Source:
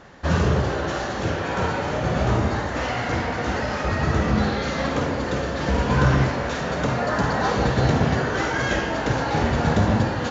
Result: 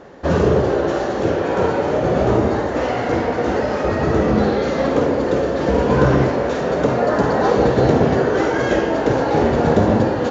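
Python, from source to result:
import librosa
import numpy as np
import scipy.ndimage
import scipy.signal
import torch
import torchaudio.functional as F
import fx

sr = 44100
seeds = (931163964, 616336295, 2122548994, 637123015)

y = fx.peak_eq(x, sr, hz=420.0, db=13.0, octaves=1.9)
y = y * librosa.db_to_amplitude(-2.0)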